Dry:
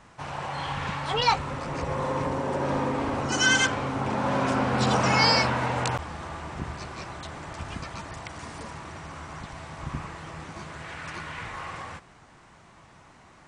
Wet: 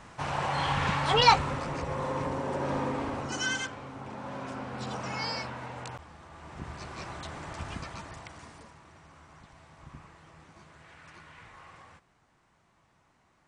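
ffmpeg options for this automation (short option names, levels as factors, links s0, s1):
-af "volume=5.31,afade=t=out:st=1.27:d=0.56:silence=0.446684,afade=t=out:st=2.91:d=0.79:silence=0.334965,afade=t=in:st=6.3:d=0.78:silence=0.266073,afade=t=out:st=7.65:d=1.09:silence=0.237137"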